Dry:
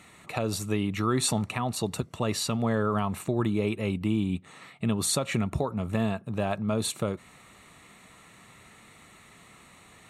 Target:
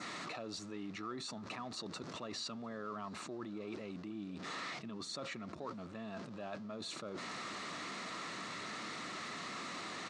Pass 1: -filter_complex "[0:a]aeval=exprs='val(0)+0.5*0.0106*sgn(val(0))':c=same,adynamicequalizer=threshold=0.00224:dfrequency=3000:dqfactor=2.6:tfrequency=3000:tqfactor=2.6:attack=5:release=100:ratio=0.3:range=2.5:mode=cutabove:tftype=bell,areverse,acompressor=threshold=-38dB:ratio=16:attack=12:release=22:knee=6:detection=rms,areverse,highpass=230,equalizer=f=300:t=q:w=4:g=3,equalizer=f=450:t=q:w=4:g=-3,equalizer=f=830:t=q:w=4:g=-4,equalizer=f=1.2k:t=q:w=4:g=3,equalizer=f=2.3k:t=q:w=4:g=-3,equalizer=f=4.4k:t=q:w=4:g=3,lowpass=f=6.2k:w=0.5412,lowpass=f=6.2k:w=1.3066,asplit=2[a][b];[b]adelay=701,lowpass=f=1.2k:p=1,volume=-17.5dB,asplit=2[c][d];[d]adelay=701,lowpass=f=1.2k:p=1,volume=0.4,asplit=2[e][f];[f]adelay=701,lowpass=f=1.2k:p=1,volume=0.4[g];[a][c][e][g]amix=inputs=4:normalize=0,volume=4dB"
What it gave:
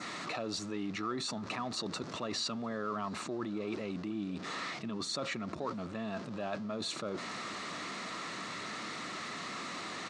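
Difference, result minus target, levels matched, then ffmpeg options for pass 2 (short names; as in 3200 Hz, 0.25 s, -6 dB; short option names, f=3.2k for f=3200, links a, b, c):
compressor: peak gain reduction -7 dB
-filter_complex "[0:a]aeval=exprs='val(0)+0.5*0.0106*sgn(val(0))':c=same,adynamicequalizer=threshold=0.00224:dfrequency=3000:dqfactor=2.6:tfrequency=3000:tqfactor=2.6:attack=5:release=100:ratio=0.3:range=2.5:mode=cutabove:tftype=bell,areverse,acompressor=threshold=-45.5dB:ratio=16:attack=12:release=22:knee=6:detection=rms,areverse,highpass=230,equalizer=f=300:t=q:w=4:g=3,equalizer=f=450:t=q:w=4:g=-3,equalizer=f=830:t=q:w=4:g=-4,equalizer=f=1.2k:t=q:w=4:g=3,equalizer=f=2.3k:t=q:w=4:g=-3,equalizer=f=4.4k:t=q:w=4:g=3,lowpass=f=6.2k:w=0.5412,lowpass=f=6.2k:w=1.3066,asplit=2[a][b];[b]adelay=701,lowpass=f=1.2k:p=1,volume=-17.5dB,asplit=2[c][d];[d]adelay=701,lowpass=f=1.2k:p=1,volume=0.4,asplit=2[e][f];[f]adelay=701,lowpass=f=1.2k:p=1,volume=0.4[g];[a][c][e][g]amix=inputs=4:normalize=0,volume=4dB"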